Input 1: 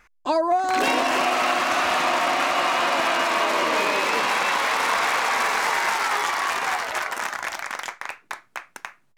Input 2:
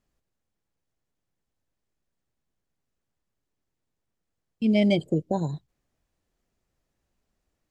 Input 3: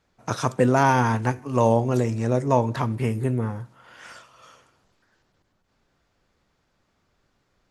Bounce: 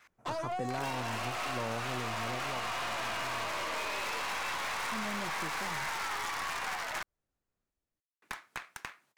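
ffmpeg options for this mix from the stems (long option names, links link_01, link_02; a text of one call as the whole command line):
ffmpeg -i stem1.wav -i stem2.wav -i stem3.wav -filter_complex "[0:a]aeval=exprs='if(lt(val(0),0),0.251*val(0),val(0))':channel_layout=same,highpass=frequency=620:poles=1,aeval=exprs='(tanh(20*val(0)+0.25)-tanh(0.25))/20':channel_layout=same,volume=1dB,asplit=3[link_01][link_02][link_03];[link_01]atrim=end=7.03,asetpts=PTS-STARTPTS,afade=type=out:start_time=7.026:duration=0.004:curve=hsin[link_04];[link_02]atrim=start=7.03:end=8.22,asetpts=PTS-STARTPTS,volume=0[link_05];[link_03]atrim=start=8.22,asetpts=PTS-STARTPTS,afade=type=in:duration=0.004:curve=hsin[link_06];[link_04][link_05][link_06]concat=n=3:v=0:a=1[link_07];[1:a]adelay=300,volume=-13dB[link_08];[2:a]equalizer=frequency=4200:width=1.8:gain=-13.5,volume=-10dB,afade=type=out:start_time=2.14:duration=0.57:silence=0.251189[link_09];[link_07][link_08][link_09]amix=inputs=3:normalize=0,acompressor=threshold=-35dB:ratio=3" out.wav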